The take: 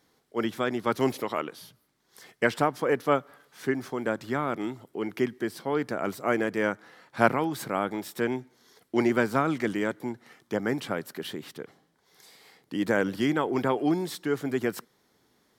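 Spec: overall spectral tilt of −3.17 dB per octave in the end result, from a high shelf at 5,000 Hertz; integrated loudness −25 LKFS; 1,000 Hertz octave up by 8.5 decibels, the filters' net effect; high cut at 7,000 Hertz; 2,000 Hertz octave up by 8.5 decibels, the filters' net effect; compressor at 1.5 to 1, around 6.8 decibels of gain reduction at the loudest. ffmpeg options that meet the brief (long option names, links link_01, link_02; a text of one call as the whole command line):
ffmpeg -i in.wav -af "lowpass=7000,equalizer=frequency=1000:width_type=o:gain=9,equalizer=frequency=2000:width_type=o:gain=7,highshelf=frequency=5000:gain=3.5,acompressor=threshold=-28dB:ratio=1.5,volume=3.5dB" out.wav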